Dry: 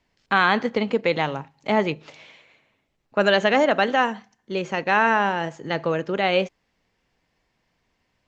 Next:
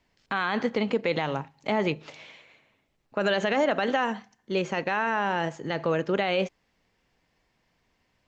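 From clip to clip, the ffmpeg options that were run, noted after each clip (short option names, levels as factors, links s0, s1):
-af "alimiter=limit=0.188:level=0:latency=1:release=62"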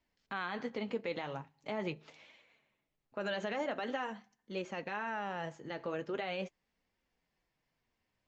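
-af "flanger=delay=3.1:depth=6.7:regen=-47:speed=0.43:shape=triangular,volume=0.398"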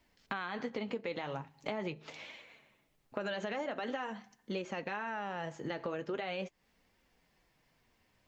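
-af "acompressor=threshold=0.00501:ratio=5,volume=3.35"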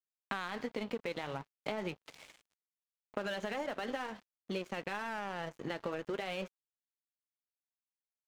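-af "aeval=exprs='sgn(val(0))*max(abs(val(0))-0.00398,0)':c=same,volume=1.19"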